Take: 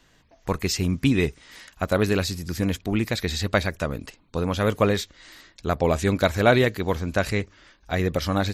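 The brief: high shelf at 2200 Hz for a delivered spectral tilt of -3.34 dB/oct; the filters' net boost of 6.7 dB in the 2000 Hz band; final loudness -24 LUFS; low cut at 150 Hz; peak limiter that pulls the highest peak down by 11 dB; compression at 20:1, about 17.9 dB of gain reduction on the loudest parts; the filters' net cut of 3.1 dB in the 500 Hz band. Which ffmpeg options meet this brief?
-af "highpass=150,equalizer=f=500:t=o:g=-4.5,equalizer=f=2k:t=o:g=6.5,highshelf=f=2.2k:g=4.5,acompressor=threshold=-29dB:ratio=20,volume=13.5dB,alimiter=limit=-10dB:level=0:latency=1"

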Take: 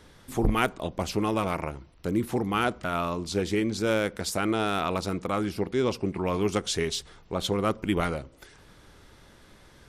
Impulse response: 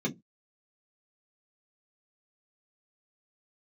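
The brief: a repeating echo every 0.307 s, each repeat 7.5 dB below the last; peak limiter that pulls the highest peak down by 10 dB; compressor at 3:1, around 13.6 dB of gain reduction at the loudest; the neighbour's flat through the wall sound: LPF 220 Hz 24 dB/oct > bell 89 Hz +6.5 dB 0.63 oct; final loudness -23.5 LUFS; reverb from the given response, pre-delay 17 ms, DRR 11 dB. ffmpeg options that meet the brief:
-filter_complex "[0:a]acompressor=threshold=-37dB:ratio=3,alimiter=level_in=7dB:limit=-24dB:level=0:latency=1,volume=-7dB,aecho=1:1:307|614|921|1228|1535:0.422|0.177|0.0744|0.0312|0.0131,asplit=2[a][b];[1:a]atrim=start_sample=2205,adelay=17[c];[b][c]afir=irnorm=-1:irlink=0,volume=-17dB[d];[a][d]amix=inputs=2:normalize=0,lowpass=f=220:w=0.5412,lowpass=f=220:w=1.3066,equalizer=f=89:t=o:w=0.63:g=6.5,volume=20dB"

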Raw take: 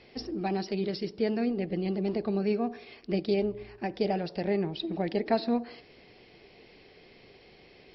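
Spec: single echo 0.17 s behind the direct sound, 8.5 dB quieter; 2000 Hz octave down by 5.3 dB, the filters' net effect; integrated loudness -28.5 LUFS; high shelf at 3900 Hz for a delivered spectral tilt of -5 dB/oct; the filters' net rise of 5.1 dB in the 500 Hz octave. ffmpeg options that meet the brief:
-af "equalizer=f=500:t=o:g=7,equalizer=f=2k:t=o:g=-8.5,highshelf=f=3.9k:g=6,aecho=1:1:170:0.376,volume=-1.5dB"

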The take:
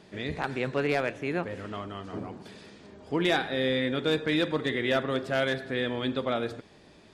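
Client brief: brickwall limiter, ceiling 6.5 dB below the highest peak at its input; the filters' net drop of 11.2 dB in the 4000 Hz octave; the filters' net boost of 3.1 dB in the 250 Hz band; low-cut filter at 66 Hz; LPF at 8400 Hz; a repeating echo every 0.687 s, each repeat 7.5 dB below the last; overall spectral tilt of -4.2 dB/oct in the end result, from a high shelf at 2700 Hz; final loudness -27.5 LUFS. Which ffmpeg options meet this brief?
-af "highpass=66,lowpass=8.4k,equalizer=f=250:t=o:g=4,highshelf=f=2.7k:g=-6,equalizer=f=4k:t=o:g=-9,alimiter=limit=-21dB:level=0:latency=1,aecho=1:1:687|1374|2061|2748|3435:0.422|0.177|0.0744|0.0312|0.0131,volume=4dB"

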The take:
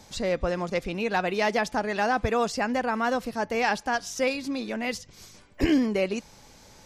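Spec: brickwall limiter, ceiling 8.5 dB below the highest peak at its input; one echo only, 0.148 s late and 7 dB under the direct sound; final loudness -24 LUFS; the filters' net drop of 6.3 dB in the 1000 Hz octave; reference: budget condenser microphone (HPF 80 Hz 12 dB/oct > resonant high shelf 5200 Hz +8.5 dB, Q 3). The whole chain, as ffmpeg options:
-af "equalizer=f=1k:t=o:g=-9,alimiter=limit=-20.5dB:level=0:latency=1,highpass=80,highshelf=f=5.2k:t=q:w=3:g=8.5,aecho=1:1:148:0.447,volume=5dB"

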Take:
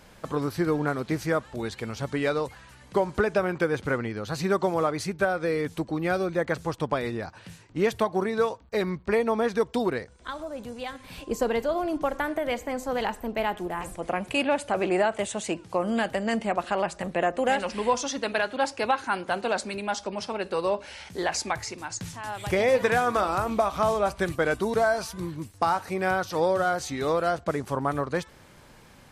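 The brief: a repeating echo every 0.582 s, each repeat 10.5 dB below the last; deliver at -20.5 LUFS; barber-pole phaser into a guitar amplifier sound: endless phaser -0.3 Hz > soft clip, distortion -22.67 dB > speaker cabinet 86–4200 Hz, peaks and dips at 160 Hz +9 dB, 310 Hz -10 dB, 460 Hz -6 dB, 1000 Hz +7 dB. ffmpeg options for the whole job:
-filter_complex "[0:a]aecho=1:1:582|1164|1746:0.299|0.0896|0.0269,asplit=2[a][b];[b]afreqshift=-0.3[c];[a][c]amix=inputs=2:normalize=1,asoftclip=threshold=-16dB,highpass=86,equalizer=f=160:t=q:w=4:g=9,equalizer=f=310:t=q:w=4:g=-10,equalizer=f=460:t=q:w=4:g=-6,equalizer=f=1k:t=q:w=4:g=7,lowpass=f=4.2k:w=0.5412,lowpass=f=4.2k:w=1.3066,volume=10.5dB"

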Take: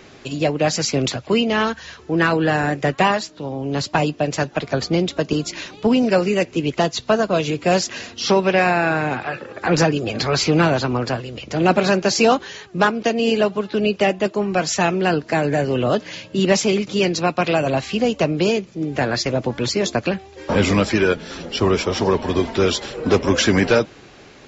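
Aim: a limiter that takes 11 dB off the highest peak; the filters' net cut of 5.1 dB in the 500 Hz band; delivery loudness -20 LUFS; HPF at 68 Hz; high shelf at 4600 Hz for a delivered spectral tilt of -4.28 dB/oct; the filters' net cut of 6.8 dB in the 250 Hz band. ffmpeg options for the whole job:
-af "highpass=68,equalizer=f=250:t=o:g=-8.5,equalizer=f=500:t=o:g=-4,highshelf=f=4.6k:g=-5.5,volume=6.5dB,alimiter=limit=-9.5dB:level=0:latency=1"

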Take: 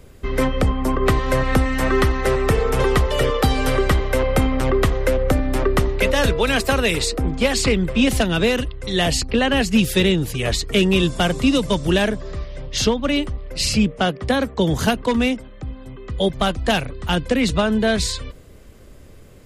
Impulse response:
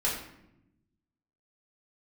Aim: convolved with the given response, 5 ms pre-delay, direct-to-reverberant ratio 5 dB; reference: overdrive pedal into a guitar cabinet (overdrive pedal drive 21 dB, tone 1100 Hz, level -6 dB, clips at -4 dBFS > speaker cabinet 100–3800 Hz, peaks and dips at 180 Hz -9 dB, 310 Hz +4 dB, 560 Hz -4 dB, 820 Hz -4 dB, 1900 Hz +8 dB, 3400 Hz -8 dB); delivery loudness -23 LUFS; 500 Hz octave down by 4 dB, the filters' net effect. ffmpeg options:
-filter_complex "[0:a]equalizer=f=500:t=o:g=-3.5,asplit=2[a][b];[1:a]atrim=start_sample=2205,adelay=5[c];[b][c]afir=irnorm=-1:irlink=0,volume=-13.5dB[d];[a][d]amix=inputs=2:normalize=0,asplit=2[e][f];[f]highpass=f=720:p=1,volume=21dB,asoftclip=type=tanh:threshold=-4dB[g];[e][g]amix=inputs=2:normalize=0,lowpass=f=1.1k:p=1,volume=-6dB,highpass=100,equalizer=f=180:t=q:w=4:g=-9,equalizer=f=310:t=q:w=4:g=4,equalizer=f=560:t=q:w=4:g=-4,equalizer=f=820:t=q:w=4:g=-4,equalizer=f=1.9k:t=q:w=4:g=8,equalizer=f=3.4k:t=q:w=4:g=-8,lowpass=f=3.8k:w=0.5412,lowpass=f=3.8k:w=1.3066,volume=-6.5dB"

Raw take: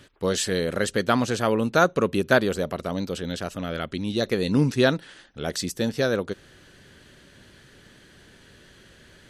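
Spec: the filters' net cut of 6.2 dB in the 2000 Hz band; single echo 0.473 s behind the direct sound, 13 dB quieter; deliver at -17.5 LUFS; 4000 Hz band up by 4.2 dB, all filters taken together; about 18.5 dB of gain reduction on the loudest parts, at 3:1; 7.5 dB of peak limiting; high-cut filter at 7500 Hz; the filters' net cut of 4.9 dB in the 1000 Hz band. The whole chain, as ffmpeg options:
-af "lowpass=7.5k,equalizer=f=1k:t=o:g=-5,equalizer=f=2k:t=o:g=-8,equalizer=f=4k:t=o:g=7.5,acompressor=threshold=-42dB:ratio=3,alimiter=level_in=8dB:limit=-24dB:level=0:latency=1,volume=-8dB,aecho=1:1:473:0.224,volume=27dB"

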